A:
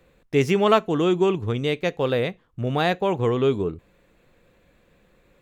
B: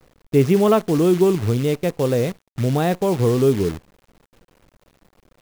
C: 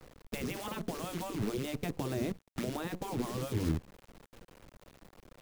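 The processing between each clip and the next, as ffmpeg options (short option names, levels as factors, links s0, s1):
-af "tiltshelf=f=750:g=7,acrusher=bits=6:dc=4:mix=0:aa=0.000001"
-filter_complex "[0:a]afftfilt=real='re*lt(hypot(re,im),0.447)':imag='im*lt(hypot(re,im),0.447)':win_size=1024:overlap=0.75,acrossover=split=330[s0][s1];[s1]acompressor=threshold=0.01:ratio=6[s2];[s0][s2]amix=inputs=2:normalize=0"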